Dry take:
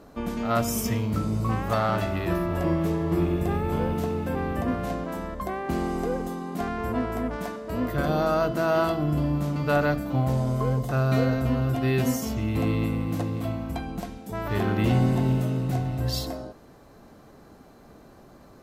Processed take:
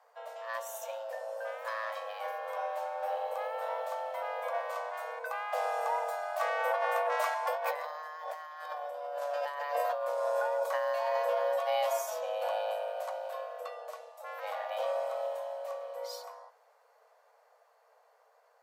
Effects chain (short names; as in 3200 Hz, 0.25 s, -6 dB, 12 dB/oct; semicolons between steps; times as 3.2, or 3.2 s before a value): Doppler pass-by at 8.42, 10 m/s, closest 4.8 m; notches 50/100/150 Hz; negative-ratio compressor -39 dBFS, ratio -1; frequency shift +430 Hz; gain +5.5 dB